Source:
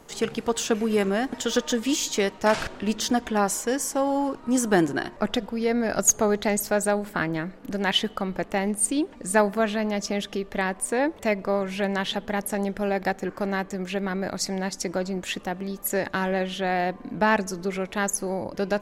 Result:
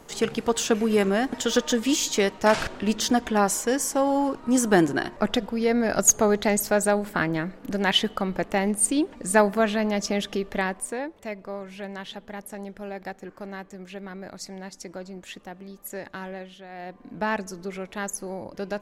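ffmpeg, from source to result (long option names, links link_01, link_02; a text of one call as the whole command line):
ffmpeg -i in.wav -af "volume=14.5dB,afade=type=out:start_time=10.49:duration=0.58:silence=0.266073,afade=type=out:start_time=16.25:duration=0.43:silence=0.375837,afade=type=in:start_time=16.68:duration=0.53:silence=0.223872" out.wav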